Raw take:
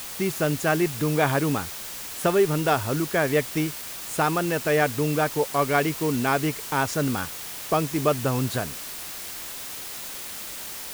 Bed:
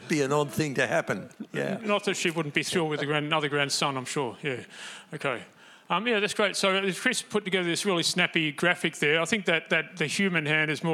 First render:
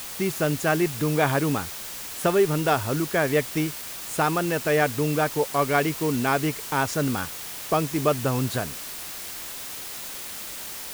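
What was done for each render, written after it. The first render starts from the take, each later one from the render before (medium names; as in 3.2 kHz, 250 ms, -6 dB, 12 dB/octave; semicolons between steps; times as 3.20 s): no audible change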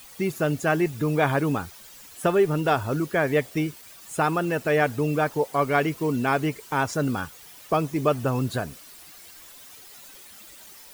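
noise reduction 13 dB, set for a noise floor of -36 dBFS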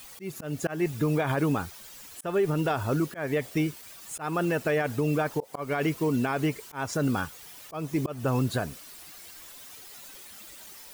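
slow attack 234 ms; peak limiter -17.5 dBFS, peak gain reduction 10.5 dB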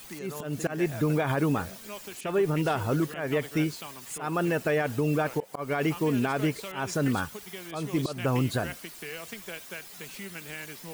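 add bed -16 dB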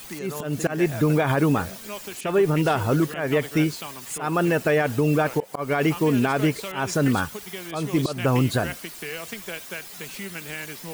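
trim +5.5 dB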